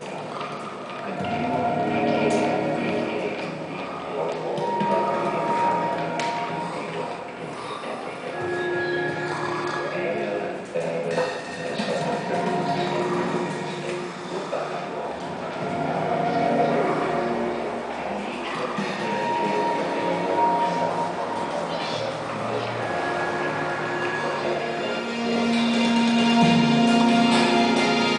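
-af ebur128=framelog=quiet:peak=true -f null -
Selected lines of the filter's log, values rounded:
Integrated loudness:
  I:         -24.6 LUFS
  Threshold: -34.5 LUFS
Loudness range:
  LRA:         6.0 LU
  Threshold: -45.1 LUFS
  LRA low:   -27.6 LUFS
  LRA high:  -21.6 LUFS
True peak:
  Peak:       -6.5 dBFS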